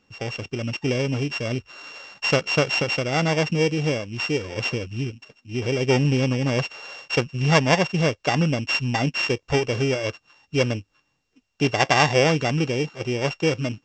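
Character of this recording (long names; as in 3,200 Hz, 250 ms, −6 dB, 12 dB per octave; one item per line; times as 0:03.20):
a buzz of ramps at a fixed pitch in blocks of 16 samples
mu-law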